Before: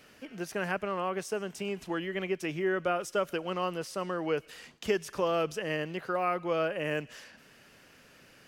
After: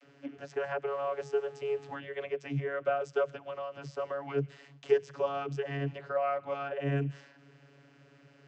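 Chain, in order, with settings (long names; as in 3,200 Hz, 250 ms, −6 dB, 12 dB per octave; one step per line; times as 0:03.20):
0:00.90–0:01.94: hum with harmonics 400 Hz, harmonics 28, −52 dBFS −6 dB per octave
0:03.26–0:03.74: downward compressor, threshold −33 dBFS, peak gain reduction 7 dB
channel vocoder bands 32, saw 140 Hz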